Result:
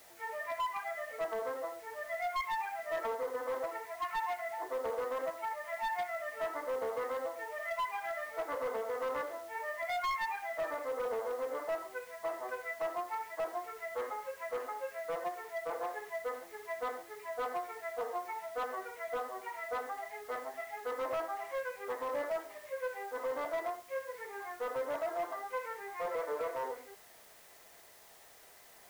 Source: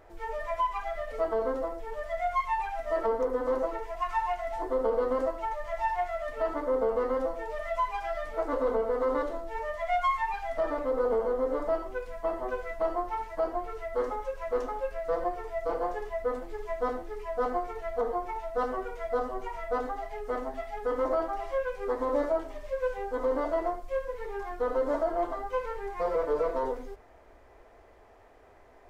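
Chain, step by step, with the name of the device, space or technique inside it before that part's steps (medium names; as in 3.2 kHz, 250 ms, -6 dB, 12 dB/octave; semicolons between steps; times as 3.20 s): drive-through speaker (band-pass 520–3100 Hz; peaking EQ 2 kHz +8 dB 0.56 oct; hard clipper -25.5 dBFS, distortion -16 dB; white noise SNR 21 dB); trim -5 dB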